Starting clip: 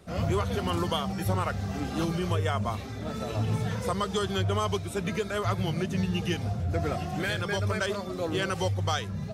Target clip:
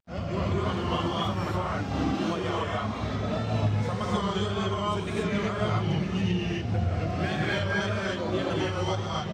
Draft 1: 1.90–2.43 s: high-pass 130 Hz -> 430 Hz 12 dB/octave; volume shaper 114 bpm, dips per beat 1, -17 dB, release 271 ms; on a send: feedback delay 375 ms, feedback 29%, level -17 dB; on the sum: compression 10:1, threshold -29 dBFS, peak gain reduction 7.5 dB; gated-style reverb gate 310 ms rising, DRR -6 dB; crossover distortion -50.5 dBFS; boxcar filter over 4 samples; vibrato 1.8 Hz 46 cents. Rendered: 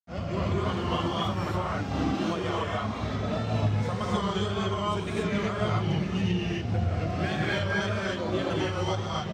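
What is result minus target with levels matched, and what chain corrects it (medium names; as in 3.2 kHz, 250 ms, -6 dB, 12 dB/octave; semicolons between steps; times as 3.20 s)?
crossover distortion: distortion +7 dB
1.90–2.43 s: high-pass 130 Hz -> 430 Hz 12 dB/octave; volume shaper 114 bpm, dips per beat 1, -17 dB, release 271 ms; on a send: feedback delay 375 ms, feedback 29%, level -17 dB; on the sum: compression 10:1, threshold -29 dBFS, peak gain reduction 7.5 dB; gated-style reverb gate 310 ms rising, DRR -6 dB; crossover distortion -57.5 dBFS; boxcar filter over 4 samples; vibrato 1.8 Hz 46 cents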